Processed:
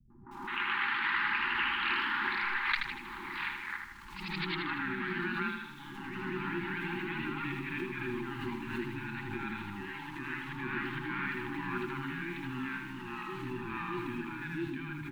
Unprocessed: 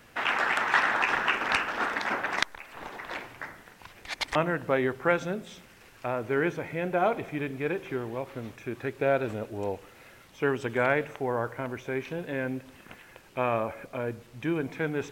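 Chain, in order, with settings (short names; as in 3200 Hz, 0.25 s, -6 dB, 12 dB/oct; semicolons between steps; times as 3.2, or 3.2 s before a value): G.711 law mismatch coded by A; elliptic low-pass 4100 Hz, stop band 40 dB; requantised 10-bit, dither none; high shelf 2300 Hz -8 dB; comb 5 ms, depth 42%; dynamic EQ 2900 Hz, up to +5 dB, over -46 dBFS, Q 1; reverse; compressor 6:1, threshold -34 dBFS, peak gain reduction 14.5 dB; reverse; three bands offset in time lows, mids, highs 0.1/0.31 s, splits 170/770 Hz; echoes that change speed 0.153 s, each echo +1 st, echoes 3; FFT band-reject 380–800 Hz; on a send: feedback echo 79 ms, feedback 47%, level -5.5 dB; on the sum: backwards sustainer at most 56 dB/s; gain +2.5 dB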